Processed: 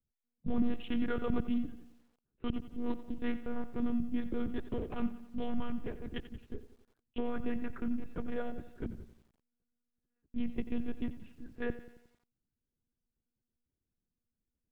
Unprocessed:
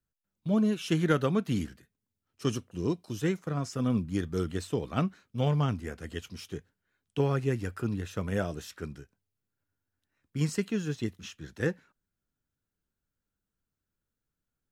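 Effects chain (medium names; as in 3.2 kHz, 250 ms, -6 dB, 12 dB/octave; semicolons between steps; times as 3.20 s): local Wiener filter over 41 samples; 10.45–10.90 s: peaking EQ 1.5 kHz -12.5 dB -> -1 dB 1 oct; peak limiter -23.5 dBFS, peak gain reduction 10.5 dB; distance through air 58 m; monotone LPC vocoder at 8 kHz 240 Hz; bit-crushed delay 89 ms, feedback 55%, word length 10-bit, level -14 dB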